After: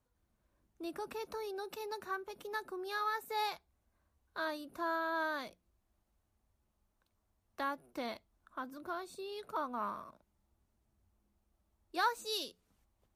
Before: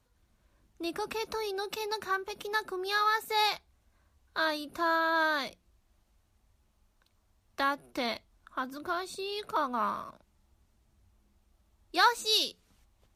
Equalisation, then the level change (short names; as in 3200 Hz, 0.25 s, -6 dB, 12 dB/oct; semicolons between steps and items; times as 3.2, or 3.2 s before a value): low shelf 110 Hz -5.5 dB; bell 3900 Hz -7 dB 2.7 oct; -5.5 dB